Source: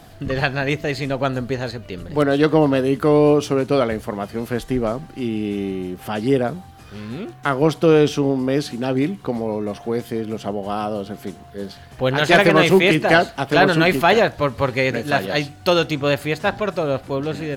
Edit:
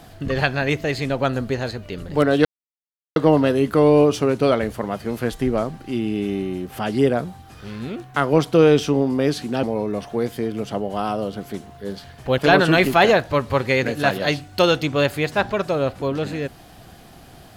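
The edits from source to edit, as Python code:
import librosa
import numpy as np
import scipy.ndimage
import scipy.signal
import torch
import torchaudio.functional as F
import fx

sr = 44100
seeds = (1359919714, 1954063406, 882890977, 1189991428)

y = fx.edit(x, sr, fx.insert_silence(at_s=2.45, length_s=0.71),
    fx.cut(start_s=8.92, length_s=0.44),
    fx.cut(start_s=12.11, length_s=1.35), tone=tone)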